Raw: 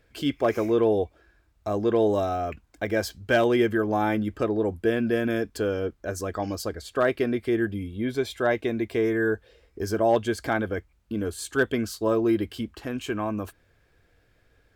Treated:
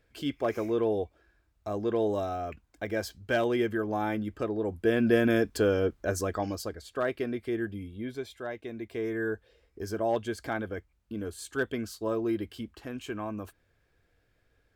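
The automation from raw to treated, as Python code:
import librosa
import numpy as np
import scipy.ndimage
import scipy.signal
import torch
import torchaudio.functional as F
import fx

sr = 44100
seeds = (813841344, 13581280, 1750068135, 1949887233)

y = fx.gain(x, sr, db=fx.line((4.62, -6.0), (5.1, 1.5), (6.14, 1.5), (6.81, -7.0), (7.92, -7.0), (8.52, -14.0), (9.19, -7.0)))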